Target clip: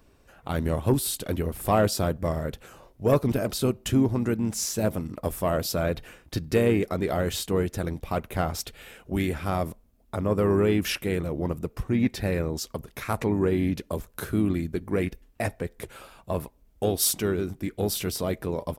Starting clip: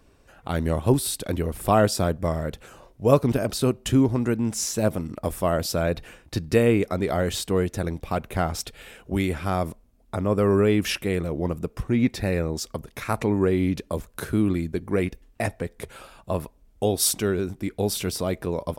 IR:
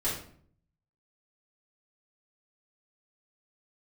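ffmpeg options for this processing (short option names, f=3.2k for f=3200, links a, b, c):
-filter_complex "[0:a]acontrast=81,aexciter=amount=1.6:drive=4.9:freq=12k,asplit=2[a][b];[b]asetrate=37084,aresample=44100,atempo=1.18921,volume=-12dB[c];[a][c]amix=inputs=2:normalize=0,volume=-9dB"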